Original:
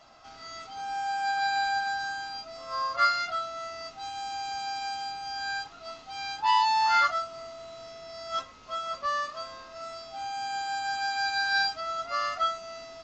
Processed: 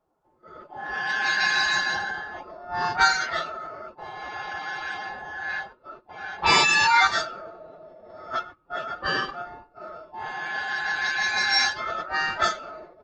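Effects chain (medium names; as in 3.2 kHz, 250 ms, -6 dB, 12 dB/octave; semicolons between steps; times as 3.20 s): on a send: thinning echo 110 ms, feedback 27%, high-pass 1.2 kHz, level -15 dB; on the sum: gate -43 dBFS, range -16 dB; formant-preserving pitch shift +5 st; level-controlled noise filter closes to 690 Hz, open at -20.5 dBFS; trim +4.5 dB; Opus 32 kbps 48 kHz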